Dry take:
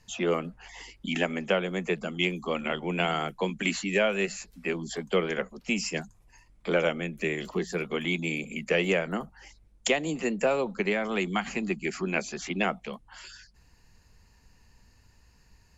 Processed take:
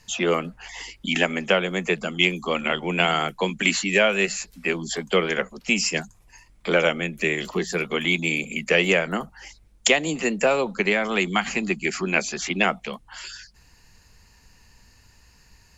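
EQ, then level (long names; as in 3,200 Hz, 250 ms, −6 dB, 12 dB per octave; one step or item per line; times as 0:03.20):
tilt shelving filter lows −3 dB, about 1,100 Hz
+6.5 dB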